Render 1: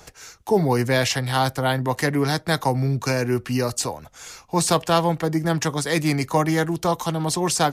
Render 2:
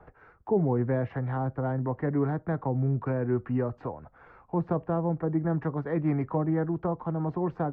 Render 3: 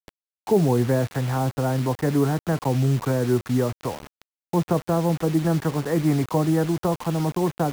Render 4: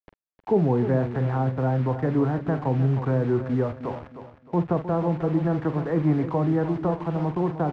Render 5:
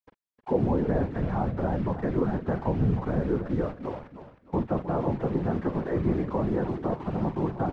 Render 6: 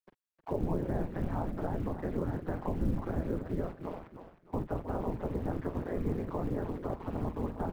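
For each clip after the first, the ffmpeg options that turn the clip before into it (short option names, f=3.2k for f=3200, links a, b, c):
-filter_complex "[0:a]lowpass=f=1.5k:w=0.5412,lowpass=f=1.5k:w=1.3066,acrossover=split=540[a][b];[b]acompressor=threshold=-33dB:ratio=4[c];[a][c]amix=inputs=2:normalize=0,volume=-4.5dB"
-af "acrusher=bits=6:mix=0:aa=0.000001,volume=6dB"
-filter_complex "[0:a]lowpass=1.9k,asplit=2[a][b];[b]adelay=46,volume=-12dB[c];[a][c]amix=inputs=2:normalize=0,asplit=2[d][e];[e]aecho=0:1:310|620|930|1240:0.282|0.0986|0.0345|0.0121[f];[d][f]amix=inputs=2:normalize=0,volume=-2dB"
-af "afftfilt=real='hypot(re,im)*cos(2*PI*random(0))':imag='hypot(re,im)*sin(2*PI*random(1))':win_size=512:overlap=0.75,volume=2.5dB"
-filter_complex "[0:a]aeval=exprs='val(0)*sin(2*PI*86*n/s)':c=same,acrusher=bits=9:mode=log:mix=0:aa=0.000001,acrossover=split=130[a][b];[b]acompressor=threshold=-36dB:ratio=1.5[c];[a][c]amix=inputs=2:normalize=0,volume=-1.5dB"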